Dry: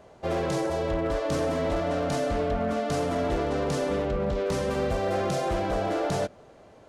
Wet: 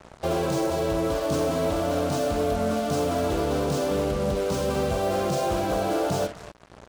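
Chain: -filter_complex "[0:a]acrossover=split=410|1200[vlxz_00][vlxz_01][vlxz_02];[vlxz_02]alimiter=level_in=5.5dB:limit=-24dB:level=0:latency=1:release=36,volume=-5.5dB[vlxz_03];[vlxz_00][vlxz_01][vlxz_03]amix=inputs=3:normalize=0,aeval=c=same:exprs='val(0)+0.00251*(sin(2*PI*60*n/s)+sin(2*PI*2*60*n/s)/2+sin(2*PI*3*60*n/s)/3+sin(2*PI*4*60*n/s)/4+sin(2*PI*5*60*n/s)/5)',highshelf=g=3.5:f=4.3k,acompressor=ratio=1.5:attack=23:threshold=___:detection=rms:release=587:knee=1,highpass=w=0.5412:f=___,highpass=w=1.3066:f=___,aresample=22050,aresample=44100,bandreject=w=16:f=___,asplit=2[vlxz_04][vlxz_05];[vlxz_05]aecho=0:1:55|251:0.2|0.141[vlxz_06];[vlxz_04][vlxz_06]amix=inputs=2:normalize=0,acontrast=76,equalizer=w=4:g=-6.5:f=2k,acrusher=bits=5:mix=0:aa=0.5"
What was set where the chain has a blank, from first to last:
-37dB, 51, 51, 1.8k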